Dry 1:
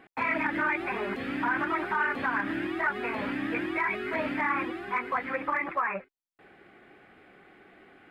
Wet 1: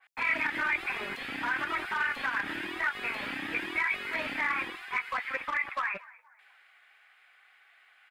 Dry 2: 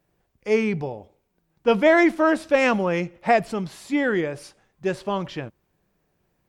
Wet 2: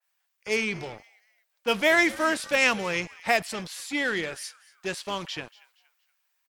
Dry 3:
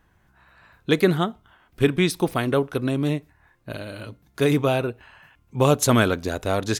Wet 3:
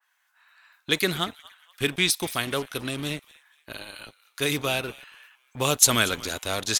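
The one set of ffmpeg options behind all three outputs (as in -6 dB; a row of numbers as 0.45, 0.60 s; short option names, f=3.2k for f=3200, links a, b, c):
-filter_complex "[0:a]tiltshelf=f=1.3k:g=-6.5,asplit=4[a][b][c][d];[b]adelay=235,afreqshift=-92,volume=-20dB[e];[c]adelay=470,afreqshift=-184,volume=-28.2dB[f];[d]adelay=705,afreqshift=-276,volume=-36.4dB[g];[a][e][f][g]amix=inputs=4:normalize=0,acrossover=split=780[h][i];[h]acrusher=bits=5:mix=0:aa=0.5[j];[j][i]amix=inputs=2:normalize=0,adynamicequalizer=threshold=0.0141:dfrequency=2100:dqfactor=0.7:tfrequency=2100:tqfactor=0.7:attack=5:release=100:ratio=0.375:range=2.5:mode=boostabove:tftype=highshelf,volume=-3.5dB"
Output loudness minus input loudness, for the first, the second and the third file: -1.5, -4.0, -2.5 LU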